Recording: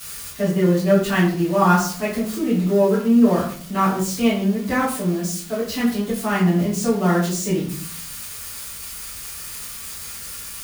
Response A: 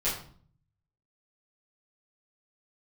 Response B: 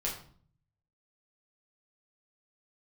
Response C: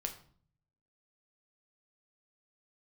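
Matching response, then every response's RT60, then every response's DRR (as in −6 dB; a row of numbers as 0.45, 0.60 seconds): A; 0.50, 0.50, 0.50 seconds; −11.5, −4.5, 4.0 decibels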